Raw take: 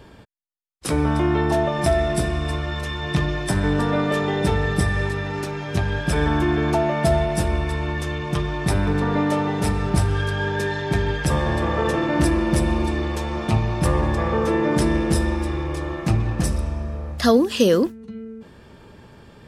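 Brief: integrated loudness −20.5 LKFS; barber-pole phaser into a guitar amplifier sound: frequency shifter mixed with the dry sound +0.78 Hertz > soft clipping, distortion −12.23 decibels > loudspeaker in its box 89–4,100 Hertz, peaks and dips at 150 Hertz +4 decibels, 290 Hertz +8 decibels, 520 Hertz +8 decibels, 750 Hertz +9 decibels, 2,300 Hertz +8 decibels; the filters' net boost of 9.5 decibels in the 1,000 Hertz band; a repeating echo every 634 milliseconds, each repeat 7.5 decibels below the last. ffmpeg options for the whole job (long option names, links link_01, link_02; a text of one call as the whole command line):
ffmpeg -i in.wav -filter_complex "[0:a]equalizer=frequency=1000:width_type=o:gain=6.5,aecho=1:1:634|1268|1902|2536|3170:0.422|0.177|0.0744|0.0312|0.0131,asplit=2[link_01][link_02];[link_02]afreqshift=0.78[link_03];[link_01][link_03]amix=inputs=2:normalize=1,asoftclip=threshold=-19.5dB,highpass=89,equalizer=frequency=150:width_type=q:width=4:gain=4,equalizer=frequency=290:width_type=q:width=4:gain=8,equalizer=frequency=520:width_type=q:width=4:gain=8,equalizer=frequency=750:width_type=q:width=4:gain=9,equalizer=frequency=2300:width_type=q:width=4:gain=8,lowpass=frequency=4100:width=0.5412,lowpass=frequency=4100:width=1.3066,volume=1.5dB" out.wav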